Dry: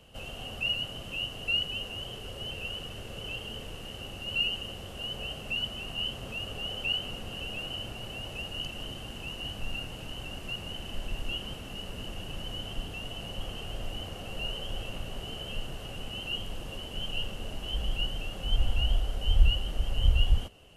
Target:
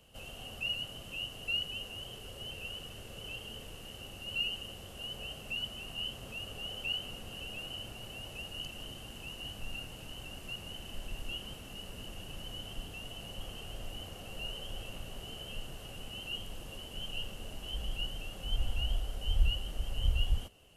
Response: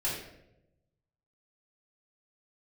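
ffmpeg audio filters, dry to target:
-af "highshelf=frequency=6500:gain=8.5,volume=-6.5dB"

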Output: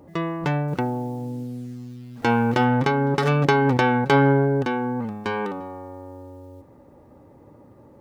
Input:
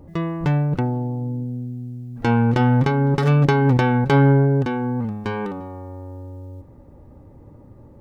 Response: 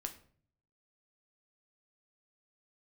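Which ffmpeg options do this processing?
-filter_complex "[0:a]highpass=frequency=360:poles=1,asettb=1/sr,asplit=3[link_01][link_02][link_03];[link_01]atrim=end=0.684[link_04];[link_02]atrim=start=0.68:end=2.65,asetpts=PTS-STARTPTS,afade=type=in:duration=0.004:curve=qsin,afade=type=out:start_time=1.966:duration=0.004:curve=qsin,acrusher=bits=8:mix=0:aa=0.5[link_05];[link_03]atrim=start=2.646[link_06];[link_04][link_05]acrossfade=duration=0.004:curve1=hsin:curve2=qsin[link_07];[link_07][link_06]acrossfade=duration=0.004:curve1=qsin:curve2=hsin,volume=2.5dB"

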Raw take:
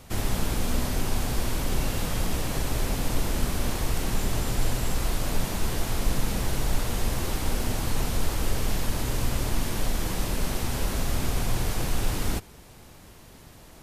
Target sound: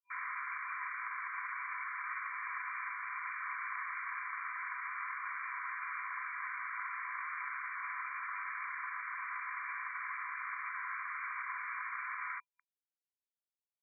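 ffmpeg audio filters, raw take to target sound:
ffmpeg -i in.wav -af "acrusher=bits=5:mix=0:aa=0.000001,afftfilt=real='re*between(b*sr/4096,980,2400)':imag='im*between(b*sr/4096,980,2400)':win_size=4096:overlap=0.75,volume=1dB" out.wav

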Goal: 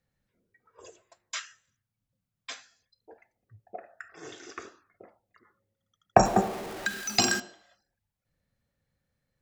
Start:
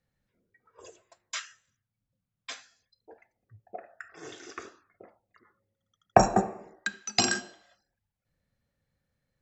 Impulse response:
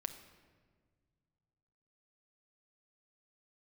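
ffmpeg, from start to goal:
-filter_complex "[0:a]asettb=1/sr,asplit=3[link_01][link_02][link_03];[link_01]atrim=end=6.254[link_04];[link_02]atrim=start=6.25:end=7.4,asetpts=PTS-STARTPTS,afade=type=in:duration=0.004:curve=qsin,afade=type=out:start_time=1.146:duration=0.004:curve=qsin,aeval=exprs='val(0)+0.5*0.02*sgn(val(0))':channel_layout=same[link_05];[link_03]atrim=start=7.396[link_06];[link_04][link_05]acrossfade=duration=0.004:curve1=hsin:curve2=qsin[link_07];[link_07][link_06]acrossfade=duration=0.004:curve1=qsin:curve2=hsin"

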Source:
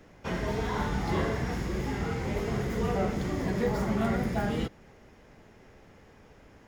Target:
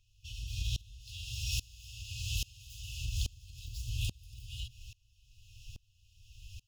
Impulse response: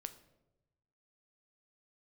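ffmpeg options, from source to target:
-filter_complex "[0:a]asettb=1/sr,asplit=3[link_01][link_02][link_03];[link_01]atrim=end=1.024[link_04];[link_02]atrim=start=1.02:end=3.04,asetpts=PTS-STARTPTS,afade=type=in:duration=0.004:curve=qsin,afade=type=out:start_time=2.016:duration=0.004:curve=qsin,lowshelf=frequency=130:gain=-11[link_05];[link_03]atrim=start=3.036[link_06];[link_04][link_05]acrossfade=duration=0.004:curve1=hsin:curve2=qsin[link_07];[link_07][link_06]acrossfade=duration=0.004:curve1=qsin:curve2=hsin,afftfilt=real='re*(1-between(b*sr/4096,120,2500))':imag='im*(1-between(b*sr/4096,120,2500))':win_size=4096:overlap=0.75,acompressor=threshold=-39dB:ratio=20,equalizer=frequency=96:width_type=o:width=2:gain=-3.5,aeval=exprs='val(0)*pow(10,-27*if(lt(mod(-1.2*n/s,1),2*abs(-1.2)/1000),1-mod(-1.2*n/s,1)/(2*abs(-1.2)/1000),(mod(-1.2*n/s,1)-2*abs(-1.2)/1000)/(1-2*abs(-1.2)/1000))/20)':channel_layout=same,volume=15.5dB"

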